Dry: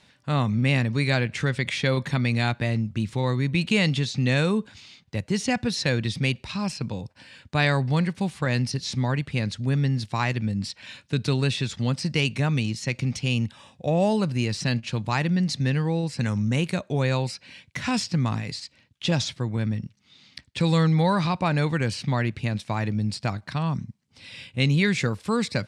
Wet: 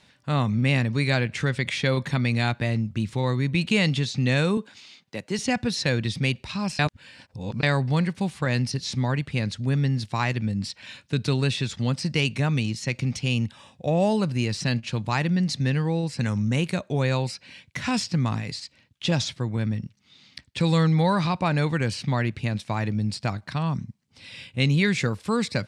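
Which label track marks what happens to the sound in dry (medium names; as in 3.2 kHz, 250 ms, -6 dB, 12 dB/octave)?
4.570000	5.390000	high-pass 230 Hz
6.790000	7.630000	reverse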